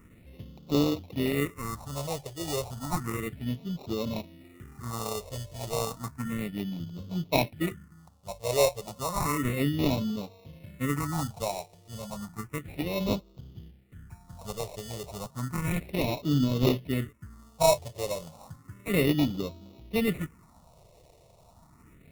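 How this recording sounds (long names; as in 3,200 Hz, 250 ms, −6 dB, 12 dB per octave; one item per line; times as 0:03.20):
aliases and images of a low sample rate 1,600 Hz, jitter 0%
phaser sweep stages 4, 0.32 Hz, lowest notch 240–1,800 Hz
AAC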